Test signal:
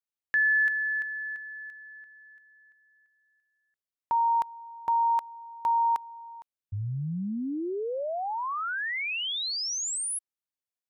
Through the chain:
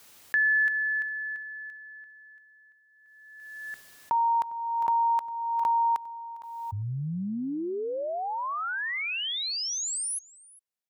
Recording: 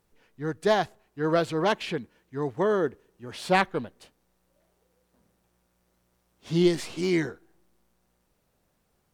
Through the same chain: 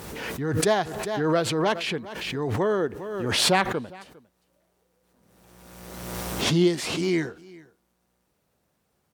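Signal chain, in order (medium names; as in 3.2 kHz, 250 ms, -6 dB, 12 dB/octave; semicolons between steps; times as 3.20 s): high-pass 64 Hz; on a send: delay 404 ms -22.5 dB; on the sum: swell ahead of each attack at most 32 dB/s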